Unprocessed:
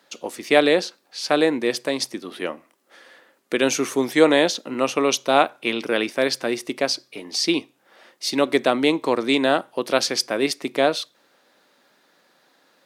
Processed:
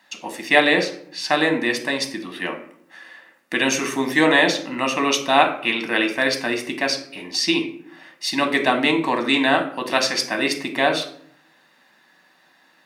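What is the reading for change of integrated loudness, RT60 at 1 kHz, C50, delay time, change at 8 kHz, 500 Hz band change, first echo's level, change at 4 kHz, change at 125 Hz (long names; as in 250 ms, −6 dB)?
+1.5 dB, 0.60 s, 10.0 dB, no echo audible, −0.5 dB, −2.5 dB, no echo audible, +2.0 dB, +2.5 dB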